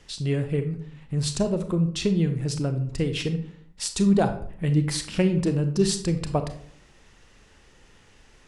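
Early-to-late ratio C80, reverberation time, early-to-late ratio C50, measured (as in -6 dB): 14.0 dB, 0.55 s, 10.0 dB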